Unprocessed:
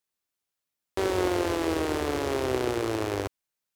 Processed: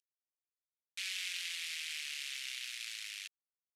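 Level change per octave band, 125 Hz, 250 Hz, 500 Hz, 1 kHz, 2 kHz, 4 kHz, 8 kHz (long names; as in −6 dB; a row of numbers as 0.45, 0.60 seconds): below −40 dB, below −40 dB, below −40 dB, −33.5 dB, −5.5 dB, 0.0 dB, −2.5 dB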